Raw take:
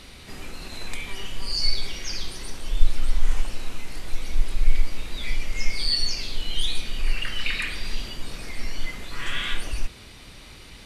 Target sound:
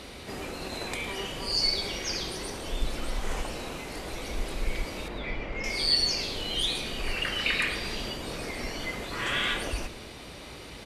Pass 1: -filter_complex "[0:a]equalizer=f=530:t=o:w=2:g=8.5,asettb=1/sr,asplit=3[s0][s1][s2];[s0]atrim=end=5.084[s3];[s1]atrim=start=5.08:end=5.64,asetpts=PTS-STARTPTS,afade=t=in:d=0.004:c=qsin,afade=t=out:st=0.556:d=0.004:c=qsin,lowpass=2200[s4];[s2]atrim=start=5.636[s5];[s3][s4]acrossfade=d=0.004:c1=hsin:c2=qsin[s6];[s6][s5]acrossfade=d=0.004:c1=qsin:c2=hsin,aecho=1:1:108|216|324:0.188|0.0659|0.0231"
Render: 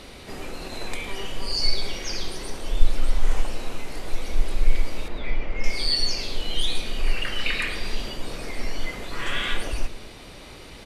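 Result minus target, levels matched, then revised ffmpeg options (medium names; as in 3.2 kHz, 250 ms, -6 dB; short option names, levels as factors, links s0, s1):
125 Hz band +4.5 dB
-filter_complex "[0:a]highpass=45,equalizer=f=530:t=o:w=2:g=8.5,asettb=1/sr,asplit=3[s0][s1][s2];[s0]atrim=end=5.084[s3];[s1]atrim=start=5.08:end=5.64,asetpts=PTS-STARTPTS,afade=t=in:d=0.004:c=qsin,afade=t=out:st=0.556:d=0.004:c=qsin,lowpass=2200[s4];[s2]atrim=start=5.636[s5];[s3][s4]acrossfade=d=0.004:c1=hsin:c2=qsin[s6];[s6][s5]acrossfade=d=0.004:c1=qsin:c2=hsin,aecho=1:1:108|216|324:0.188|0.0659|0.0231"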